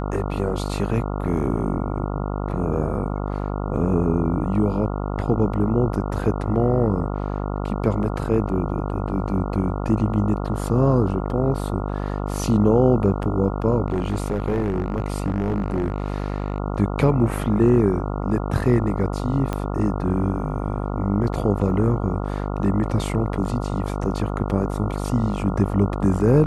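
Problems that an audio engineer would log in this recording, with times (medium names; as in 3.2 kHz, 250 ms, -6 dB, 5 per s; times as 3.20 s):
buzz 50 Hz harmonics 28 -26 dBFS
13.86–16.58 s: clipped -17.5 dBFS
19.53 s: pop -12 dBFS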